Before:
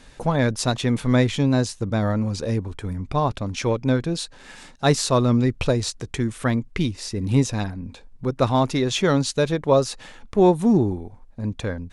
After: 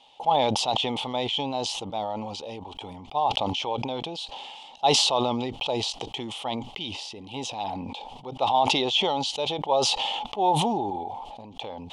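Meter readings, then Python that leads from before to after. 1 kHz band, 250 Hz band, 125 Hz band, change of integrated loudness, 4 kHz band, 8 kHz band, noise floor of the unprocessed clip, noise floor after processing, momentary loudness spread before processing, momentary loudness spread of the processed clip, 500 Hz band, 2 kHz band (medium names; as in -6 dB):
+3.0 dB, -11.5 dB, -15.5 dB, -4.0 dB, +5.5 dB, -2.5 dB, -48 dBFS, -46 dBFS, 11 LU, 16 LU, -6.0 dB, -5.0 dB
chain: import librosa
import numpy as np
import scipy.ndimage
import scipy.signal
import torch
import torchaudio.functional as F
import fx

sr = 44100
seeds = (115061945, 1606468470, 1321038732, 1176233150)

y = fx.double_bandpass(x, sr, hz=1600.0, octaves=1.9)
y = fx.sustainer(y, sr, db_per_s=25.0)
y = y * 10.0 ** (7.0 / 20.0)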